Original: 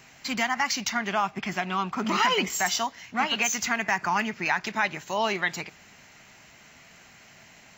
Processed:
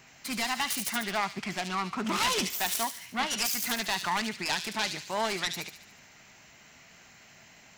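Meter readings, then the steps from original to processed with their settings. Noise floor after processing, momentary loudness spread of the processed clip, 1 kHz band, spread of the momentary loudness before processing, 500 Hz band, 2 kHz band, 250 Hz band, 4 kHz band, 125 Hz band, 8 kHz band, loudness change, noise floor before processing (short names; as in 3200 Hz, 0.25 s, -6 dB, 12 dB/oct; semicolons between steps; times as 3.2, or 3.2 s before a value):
-56 dBFS, 5 LU, -5.5 dB, 5 LU, -4.5 dB, -6.0 dB, -4.0 dB, -1.0 dB, -3.5 dB, -1.5 dB, -3.5 dB, -53 dBFS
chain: self-modulated delay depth 0.25 ms; thin delay 72 ms, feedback 51%, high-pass 3600 Hz, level -3 dB; gain -3 dB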